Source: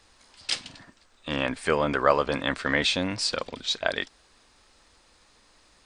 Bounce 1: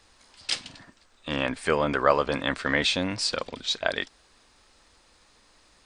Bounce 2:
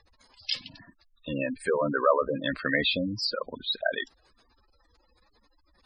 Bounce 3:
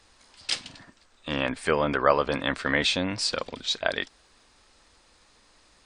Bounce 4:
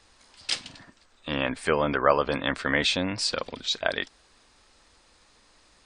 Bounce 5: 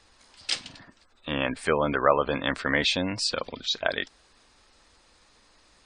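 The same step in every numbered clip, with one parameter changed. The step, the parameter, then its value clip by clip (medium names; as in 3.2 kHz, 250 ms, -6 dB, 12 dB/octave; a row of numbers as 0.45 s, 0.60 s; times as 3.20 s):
spectral gate, under each frame's peak: -60 dB, -10 dB, -45 dB, -35 dB, -25 dB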